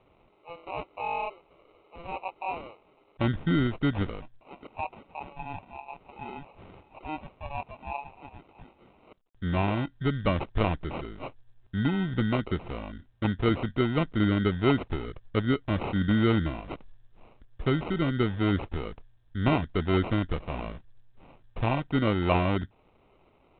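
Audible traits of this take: aliases and images of a low sample rate 1.7 kHz, jitter 0%; µ-law

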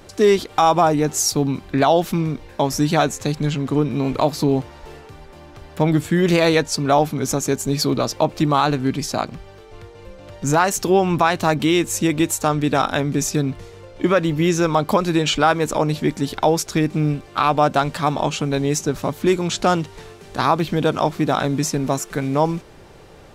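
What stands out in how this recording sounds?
noise floor -43 dBFS; spectral tilt -5.0 dB/octave

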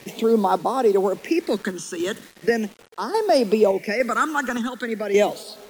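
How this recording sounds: phasing stages 8, 0.39 Hz, lowest notch 640–2300 Hz; a quantiser's noise floor 8-bit, dither none; random-step tremolo; MP3

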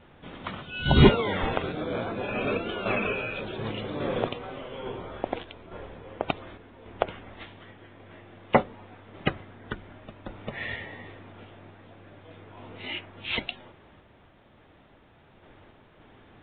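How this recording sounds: random-step tremolo; A-law

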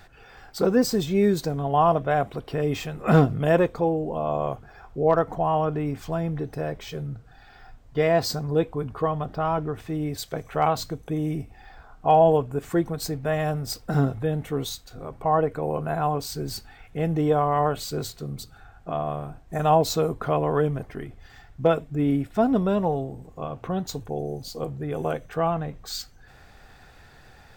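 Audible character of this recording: noise floor -51 dBFS; spectral tilt -6.0 dB/octave

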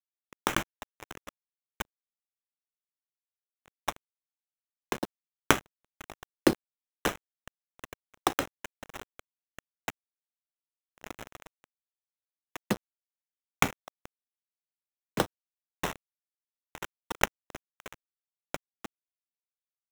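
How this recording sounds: a quantiser's noise floor 6-bit, dither none; phasing stages 2, 1.6 Hz, lowest notch 580–4200 Hz; aliases and images of a low sample rate 4.6 kHz, jitter 0%; random flutter of the level

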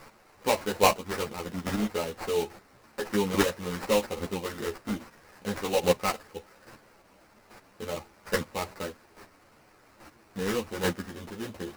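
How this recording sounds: a quantiser's noise floor 10-bit, dither triangular; chopped level 1.2 Hz, depth 65%, duty 10%; aliases and images of a low sample rate 3.4 kHz, jitter 20%; a shimmering, thickened sound

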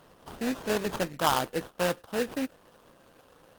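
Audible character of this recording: aliases and images of a low sample rate 2.2 kHz, jitter 20%; Opus

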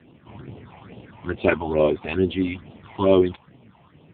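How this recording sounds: phasing stages 6, 2.3 Hz, lowest notch 370–1600 Hz; a quantiser's noise floor 10-bit, dither none; AMR-NB

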